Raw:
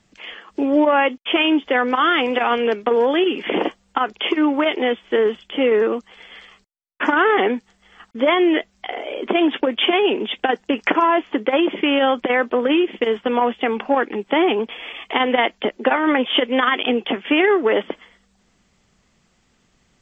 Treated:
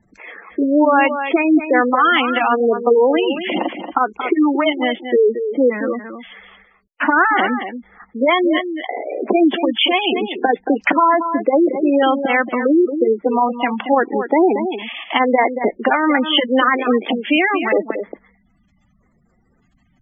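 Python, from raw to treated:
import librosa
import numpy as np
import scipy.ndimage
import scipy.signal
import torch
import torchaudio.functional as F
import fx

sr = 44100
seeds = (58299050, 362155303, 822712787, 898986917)

y = fx.filter_lfo_notch(x, sr, shape='square', hz=0.79, low_hz=430.0, high_hz=3000.0, q=1.7)
y = y + 10.0 ** (-9.0 / 20.0) * np.pad(y, (int(229 * sr / 1000.0), 0))[:len(y)]
y = fx.spec_gate(y, sr, threshold_db=-15, keep='strong')
y = y * 10.0 ** (4.0 / 20.0)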